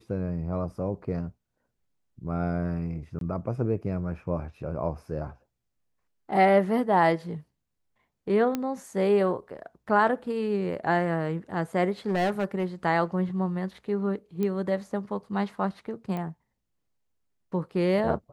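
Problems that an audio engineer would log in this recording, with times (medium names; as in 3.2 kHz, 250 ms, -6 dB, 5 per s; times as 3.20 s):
3.19–3.21 s: dropout 22 ms
8.55 s: pop -15 dBFS
12.08–12.65 s: clipped -21.5 dBFS
14.43 s: pop -18 dBFS
16.17 s: pop -22 dBFS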